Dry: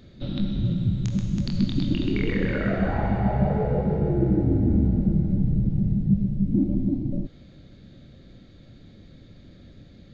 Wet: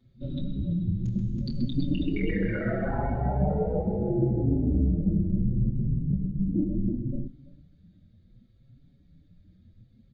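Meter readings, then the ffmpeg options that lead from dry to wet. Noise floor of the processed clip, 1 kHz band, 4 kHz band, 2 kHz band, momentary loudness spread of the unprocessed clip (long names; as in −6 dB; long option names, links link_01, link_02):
−60 dBFS, −3.5 dB, can't be measured, −4.5 dB, 5 LU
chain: -filter_complex "[0:a]afftdn=noise_reduction=17:noise_floor=-35,bandreject=frequency=50:width_type=h:width=6,bandreject=frequency=100:width_type=h:width=6,bandreject=frequency=150:width_type=h:width=6,bandreject=frequency=200:width_type=h:width=6,asplit=2[link_01][link_02];[link_02]aecho=0:1:334:0.0841[link_03];[link_01][link_03]amix=inputs=2:normalize=0,asplit=2[link_04][link_05];[link_05]adelay=5.6,afreqshift=0.7[link_06];[link_04][link_06]amix=inputs=2:normalize=1"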